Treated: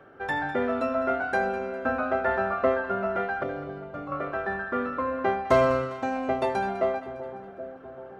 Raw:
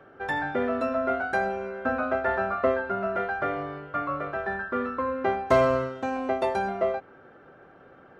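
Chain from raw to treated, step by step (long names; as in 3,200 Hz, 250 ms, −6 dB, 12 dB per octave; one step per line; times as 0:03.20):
0:03.43–0:04.12: parametric band 1,500 Hz −14 dB 2.1 octaves
on a send: echo with a time of its own for lows and highs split 800 Hz, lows 777 ms, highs 203 ms, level −13 dB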